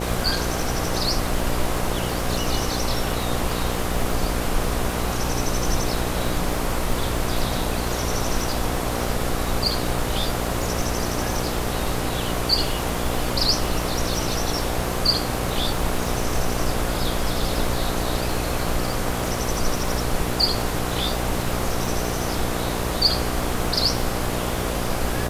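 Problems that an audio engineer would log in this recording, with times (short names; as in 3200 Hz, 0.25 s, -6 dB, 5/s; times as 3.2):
buzz 60 Hz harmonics 13 -28 dBFS
crackle 180/s -30 dBFS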